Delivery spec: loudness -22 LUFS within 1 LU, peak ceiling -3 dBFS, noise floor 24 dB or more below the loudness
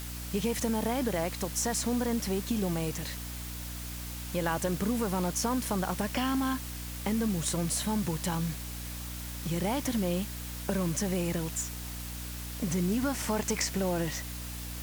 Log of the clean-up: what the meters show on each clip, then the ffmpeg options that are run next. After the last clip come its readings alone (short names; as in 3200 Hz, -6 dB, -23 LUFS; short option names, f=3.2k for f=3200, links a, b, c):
hum 60 Hz; harmonics up to 300 Hz; hum level -38 dBFS; noise floor -39 dBFS; noise floor target -56 dBFS; loudness -31.5 LUFS; peak -15.5 dBFS; loudness target -22.0 LUFS
-> -af "bandreject=f=60:t=h:w=4,bandreject=f=120:t=h:w=4,bandreject=f=180:t=h:w=4,bandreject=f=240:t=h:w=4,bandreject=f=300:t=h:w=4"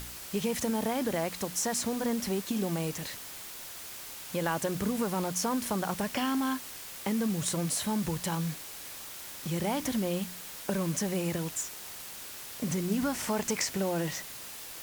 hum none; noise floor -44 dBFS; noise floor target -56 dBFS
-> -af "afftdn=nr=12:nf=-44"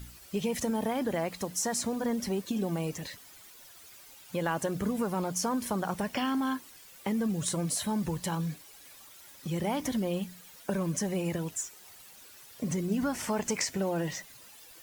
noise floor -53 dBFS; noise floor target -56 dBFS
-> -af "afftdn=nr=6:nf=-53"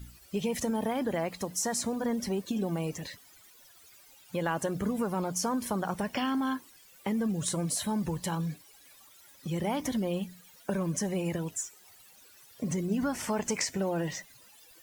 noise floor -57 dBFS; loudness -32.0 LUFS; peak -16.0 dBFS; loudness target -22.0 LUFS
-> -af "volume=10dB"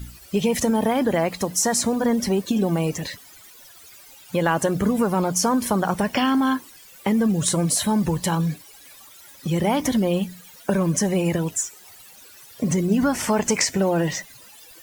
loudness -22.0 LUFS; peak -6.0 dBFS; noise floor -47 dBFS